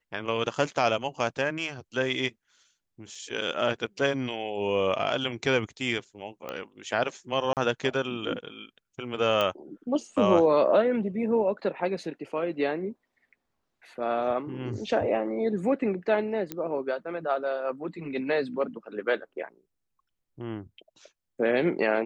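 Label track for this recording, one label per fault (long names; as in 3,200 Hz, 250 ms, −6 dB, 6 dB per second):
3.150000	3.150000	drop-out 4 ms
6.490000	6.490000	click −20 dBFS
7.530000	7.570000	drop-out 38 ms
9.410000	9.410000	click −14 dBFS
16.520000	16.520000	click −16 dBFS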